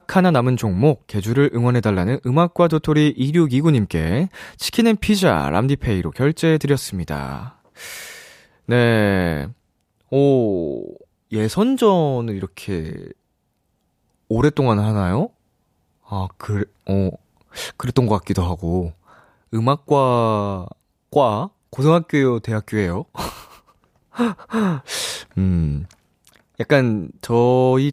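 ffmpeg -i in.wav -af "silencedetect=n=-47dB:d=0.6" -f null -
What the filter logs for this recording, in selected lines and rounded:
silence_start: 13.13
silence_end: 14.31 | silence_duration: 1.18
silence_start: 15.30
silence_end: 16.05 | silence_duration: 0.75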